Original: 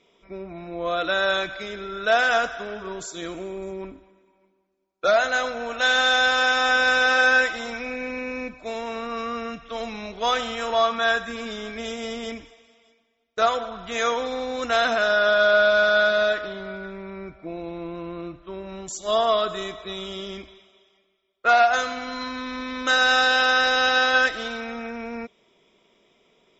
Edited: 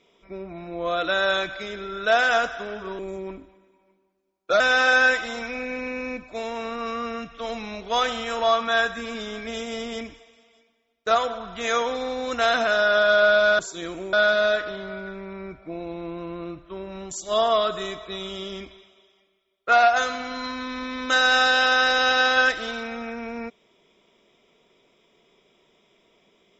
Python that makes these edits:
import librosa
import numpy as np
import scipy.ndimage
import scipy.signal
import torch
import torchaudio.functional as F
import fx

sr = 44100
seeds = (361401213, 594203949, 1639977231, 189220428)

y = fx.edit(x, sr, fx.move(start_s=2.99, length_s=0.54, to_s=15.9),
    fx.cut(start_s=5.14, length_s=1.77), tone=tone)